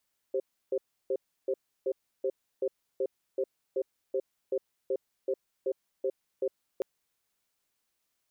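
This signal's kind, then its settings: cadence 390 Hz, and 530 Hz, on 0.06 s, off 0.32 s, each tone -29 dBFS 6.48 s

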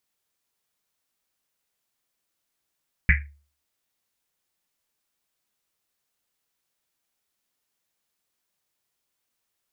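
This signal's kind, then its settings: Risset drum, pitch 72 Hz, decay 0.41 s, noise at 2000 Hz, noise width 700 Hz, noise 45%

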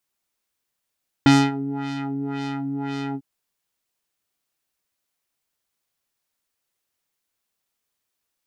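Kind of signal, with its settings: synth patch with filter wobble C#4, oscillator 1 square, interval +7 st, sub -6 dB, filter lowpass, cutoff 800 Hz, Q 1.2, filter envelope 2 oct, filter decay 0.17 s, filter sustain 30%, attack 1.4 ms, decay 0.25 s, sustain -17 dB, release 0.06 s, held 1.89 s, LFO 1.9 Hz, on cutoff 2 oct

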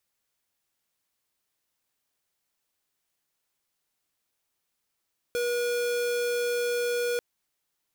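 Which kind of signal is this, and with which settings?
tone square 482 Hz -27.5 dBFS 1.84 s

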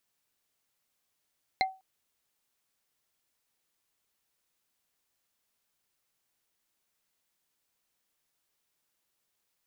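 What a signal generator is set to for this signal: wood hit, length 0.20 s, lowest mode 761 Hz, modes 3, decay 0.28 s, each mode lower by 1 dB, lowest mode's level -21 dB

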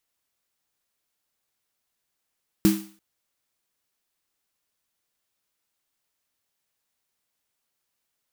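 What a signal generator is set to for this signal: snare drum length 0.34 s, tones 200 Hz, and 320 Hz, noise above 720 Hz, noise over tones -11.5 dB, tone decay 0.38 s, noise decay 0.47 s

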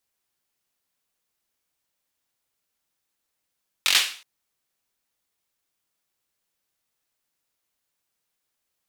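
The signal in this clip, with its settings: hand clap length 0.37 s, bursts 5, apart 22 ms, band 3000 Hz, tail 0.43 s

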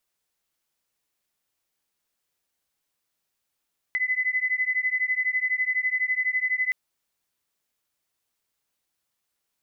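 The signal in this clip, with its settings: beating tones 2010 Hz, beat 12 Hz, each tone -25.5 dBFS 2.77 s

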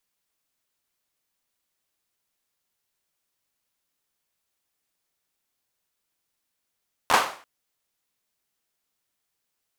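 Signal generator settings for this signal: hand clap length 0.34 s, apart 12 ms, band 940 Hz, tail 0.45 s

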